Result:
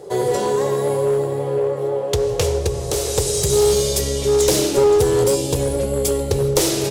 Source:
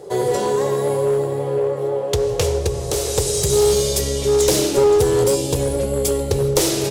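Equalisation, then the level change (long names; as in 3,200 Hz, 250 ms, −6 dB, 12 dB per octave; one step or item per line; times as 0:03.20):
no EQ move
0.0 dB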